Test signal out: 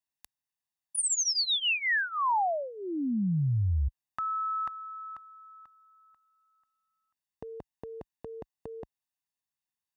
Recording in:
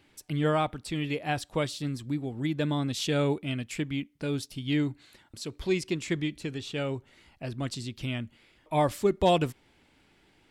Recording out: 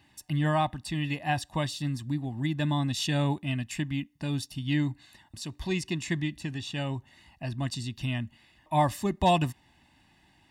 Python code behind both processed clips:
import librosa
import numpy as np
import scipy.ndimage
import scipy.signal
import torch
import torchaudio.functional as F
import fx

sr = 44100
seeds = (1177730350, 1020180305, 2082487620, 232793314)

y = scipy.signal.sosfilt(scipy.signal.butter(2, 42.0, 'highpass', fs=sr, output='sos'), x)
y = y + 0.8 * np.pad(y, (int(1.1 * sr / 1000.0), 0))[:len(y)]
y = y * librosa.db_to_amplitude(-1.0)